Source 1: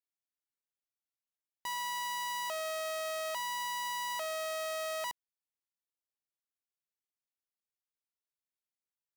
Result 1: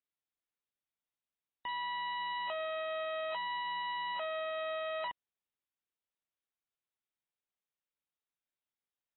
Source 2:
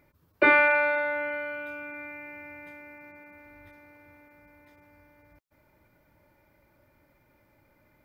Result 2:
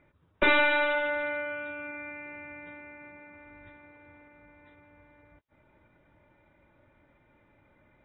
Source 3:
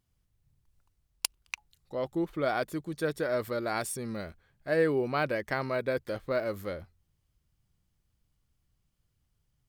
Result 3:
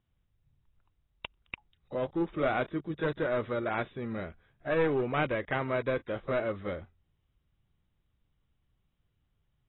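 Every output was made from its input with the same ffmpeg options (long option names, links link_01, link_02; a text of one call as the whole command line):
ffmpeg -i in.wav -filter_complex "[0:a]acrossover=split=830|5200[link_01][link_02][link_03];[link_03]acompressor=threshold=-56dB:ratio=12[link_04];[link_01][link_02][link_04]amix=inputs=3:normalize=0,aeval=exprs='clip(val(0),-1,0.0473)':channel_layout=same" -ar 22050 -c:a aac -b:a 16k out.aac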